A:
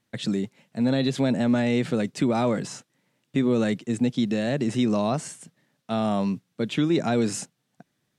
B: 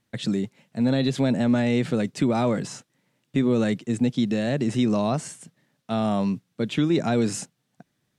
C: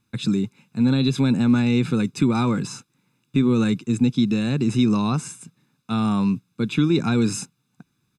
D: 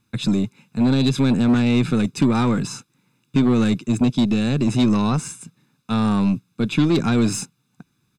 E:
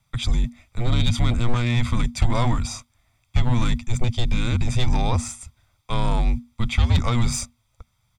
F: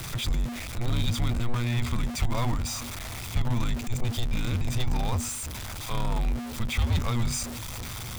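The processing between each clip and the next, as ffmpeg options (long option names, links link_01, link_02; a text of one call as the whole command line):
ffmpeg -i in.wav -af "lowshelf=frequency=89:gain=7" out.wav
ffmpeg -i in.wav -af "aecho=1:1:0.8:0.81" out.wav
ffmpeg -i in.wav -af "aeval=exprs='0.422*(cos(1*acos(clip(val(0)/0.422,-1,1)))-cos(1*PI/2))+0.075*(cos(4*acos(clip(val(0)/0.422,-1,1)))-cos(4*PI/2))+0.0335*(cos(5*acos(clip(val(0)/0.422,-1,1)))-cos(5*PI/2))+0.0668*(cos(6*acos(clip(val(0)/0.422,-1,1)))-cos(6*PI/2))':channel_layout=same" out.wav
ffmpeg -i in.wav -af "afreqshift=-240" out.wav
ffmpeg -i in.wav -af "aeval=exprs='val(0)+0.5*0.0841*sgn(val(0))':channel_layout=same,volume=-8.5dB" out.wav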